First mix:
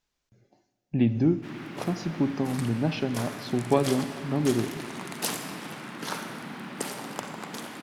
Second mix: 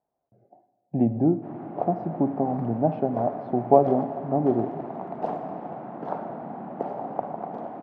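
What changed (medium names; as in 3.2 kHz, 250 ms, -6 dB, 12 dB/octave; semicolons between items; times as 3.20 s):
speech: add high-pass 110 Hz; master: add resonant low-pass 710 Hz, resonance Q 5.2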